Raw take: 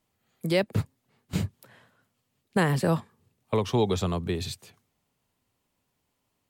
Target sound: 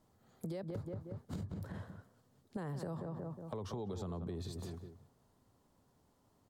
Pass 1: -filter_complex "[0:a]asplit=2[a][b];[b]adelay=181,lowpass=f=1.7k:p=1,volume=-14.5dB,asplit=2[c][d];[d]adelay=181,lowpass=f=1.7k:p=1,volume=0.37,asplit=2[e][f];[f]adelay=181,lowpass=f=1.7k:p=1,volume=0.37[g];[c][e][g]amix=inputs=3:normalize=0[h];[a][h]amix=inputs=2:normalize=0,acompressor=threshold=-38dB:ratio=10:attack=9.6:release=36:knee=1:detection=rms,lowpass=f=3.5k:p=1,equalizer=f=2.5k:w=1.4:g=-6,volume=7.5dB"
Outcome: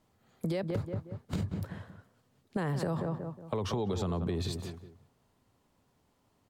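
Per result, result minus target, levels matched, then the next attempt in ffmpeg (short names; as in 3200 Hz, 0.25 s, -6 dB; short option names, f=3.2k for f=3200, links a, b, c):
compressor: peak gain reduction -9 dB; 2000 Hz band +3.0 dB
-filter_complex "[0:a]asplit=2[a][b];[b]adelay=181,lowpass=f=1.7k:p=1,volume=-14.5dB,asplit=2[c][d];[d]adelay=181,lowpass=f=1.7k:p=1,volume=0.37,asplit=2[e][f];[f]adelay=181,lowpass=f=1.7k:p=1,volume=0.37[g];[c][e][g]amix=inputs=3:normalize=0[h];[a][h]amix=inputs=2:normalize=0,acompressor=threshold=-48dB:ratio=10:attack=9.6:release=36:knee=1:detection=rms,lowpass=f=3.5k:p=1,equalizer=f=2.5k:w=1.4:g=-6,volume=7.5dB"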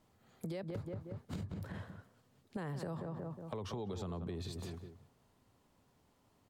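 2000 Hz band +3.5 dB
-filter_complex "[0:a]asplit=2[a][b];[b]adelay=181,lowpass=f=1.7k:p=1,volume=-14.5dB,asplit=2[c][d];[d]adelay=181,lowpass=f=1.7k:p=1,volume=0.37,asplit=2[e][f];[f]adelay=181,lowpass=f=1.7k:p=1,volume=0.37[g];[c][e][g]amix=inputs=3:normalize=0[h];[a][h]amix=inputs=2:normalize=0,acompressor=threshold=-48dB:ratio=10:attack=9.6:release=36:knee=1:detection=rms,lowpass=f=3.5k:p=1,equalizer=f=2.5k:w=1.4:g=-14,volume=7.5dB"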